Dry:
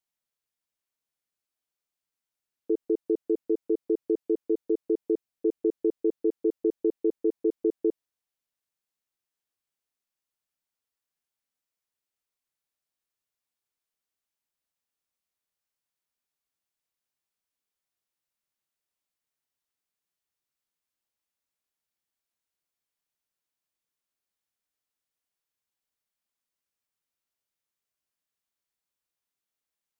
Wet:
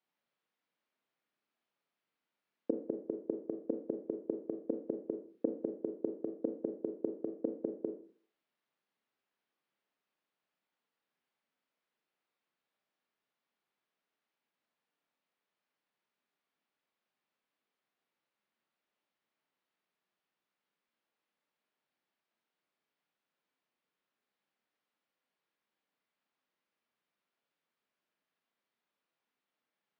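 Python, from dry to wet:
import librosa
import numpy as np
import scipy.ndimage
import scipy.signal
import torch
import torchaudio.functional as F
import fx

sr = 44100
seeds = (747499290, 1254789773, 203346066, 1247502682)

y = fx.gate_flip(x, sr, shuts_db=-25.0, range_db=-26)
y = scipy.signal.sosfilt(scipy.signal.butter(4, 160.0, 'highpass', fs=sr, output='sos'), y)
y = fx.air_absorb(y, sr, metres=300.0)
y = fx.rev_schroeder(y, sr, rt60_s=0.49, comb_ms=27, drr_db=5.0)
y = F.gain(torch.from_numpy(y), 7.5).numpy()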